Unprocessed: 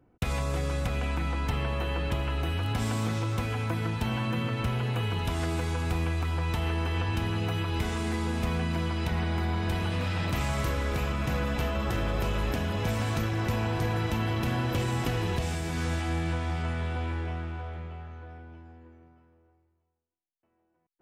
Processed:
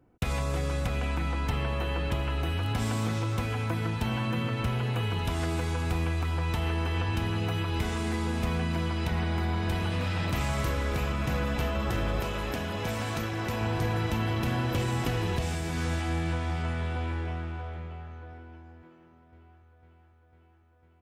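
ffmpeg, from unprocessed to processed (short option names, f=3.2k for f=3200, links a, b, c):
-filter_complex "[0:a]asettb=1/sr,asplit=3[a][b][c];[a]atrim=end=12.204[d];[b]atrim=start=12.2:end=13.61,asetpts=PTS-STARTPTS,afade=t=in:d=0.004:c=qsin,afade=t=out:st=1.406:d=0.004:c=qsin,lowshelf=f=180:g=-7[e];[c]atrim=start=13.606[f];[d][e]acrossfade=d=0.004:c1=hsin:c2=qsin[g];[g][f]acrossfade=d=0.004:c1=qsin:c2=hsin,asplit=2[h][i];[i]afade=t=in:st=17.82:d=0.01,afade=t=out:st=18.62:d=0.01,aecho=0:1:500|1000|1500|2000|2500|3000|3500|4000|4500|5000|5500|6000:0.237137|0.18971|0.151768|0.121414|0.0971315|0.0777052|0.0621641|0.0497313|0.039785|0.031828|0.0254624|0.0203699[j];[h][j]amix=inputs=2:normalize=0"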